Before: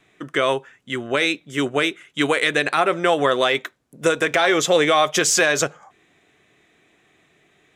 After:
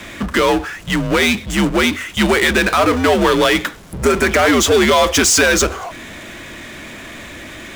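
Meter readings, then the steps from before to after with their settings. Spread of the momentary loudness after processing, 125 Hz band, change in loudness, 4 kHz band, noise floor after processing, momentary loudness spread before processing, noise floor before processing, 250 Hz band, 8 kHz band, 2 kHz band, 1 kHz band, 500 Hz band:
20 LU, +9.5 dB, +5.5 dB, +5.0 dB, −34 dBFS, 9 LU, −61 dBFS, +9.0 dB, +6.5 dB, +5.0 dB, +4.0 dB, +4.5 dB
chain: healed spectral selection 0:03.92–0:04.50, 2,600–5,300 Hz
power curve on the samples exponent 0.5
frequency shifter −85 Hz

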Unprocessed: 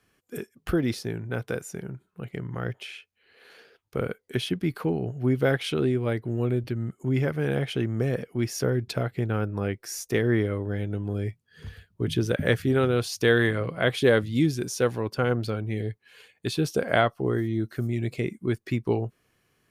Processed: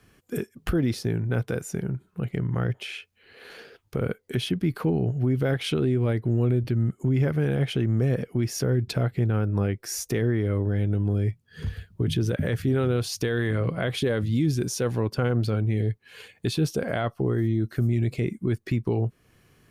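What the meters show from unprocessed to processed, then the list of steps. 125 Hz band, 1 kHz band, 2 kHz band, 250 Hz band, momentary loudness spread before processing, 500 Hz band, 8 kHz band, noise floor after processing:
+4.5 dB, −4.0 dB, −5.0 dB, +1.0 dB, 13 LU, −2.0 dB, +2.0 dB, −65 dBFS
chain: low-shelf EQ 260 Hz +8 dB
in parallel at +3 dB: downward compressor, threshold −38 dBFS, peak gain reduction 23 dB
on the sum: brickwall limiter −15 dBFS, peak gain reduction 11 dB
level −1 dB

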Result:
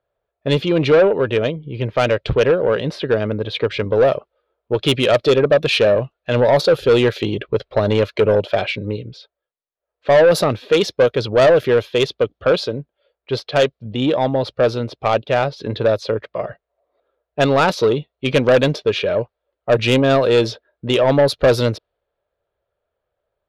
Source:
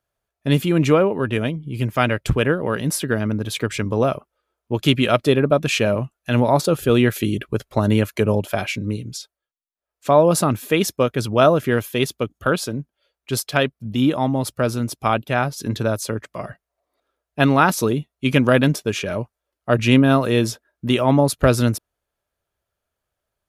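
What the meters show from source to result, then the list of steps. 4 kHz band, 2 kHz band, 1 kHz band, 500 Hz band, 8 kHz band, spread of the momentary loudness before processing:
+3.5 dB, +1.0 dB, 0.0 dB, +5.5 dB, −7.5 dB, 11 LU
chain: graphic EQ with 10 bands 250 Hz −5 dB, 500 Hz +12 dB, 4,000 Hz +12 dB, 8,000 Hz −11 dB
low-pass that shuts in the quiet parts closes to 1,900 Hz, open at −4.5 dBFS
soft clipping −7.5 dBFS, distortion −11 dB

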